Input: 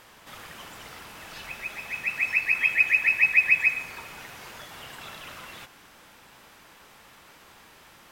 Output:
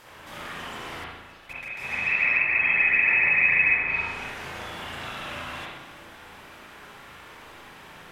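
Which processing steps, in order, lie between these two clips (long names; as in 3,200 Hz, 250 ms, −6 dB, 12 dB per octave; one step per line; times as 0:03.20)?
0:01.04–0:01.81: output level in coarse steps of 19 dB
spring reverb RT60 1 s, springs 36/60 ms, chirp 45 ms, DRR −6.5 dB
treble cut that deepens with the level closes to 2,000 Hz, closed at −15.5 dBFS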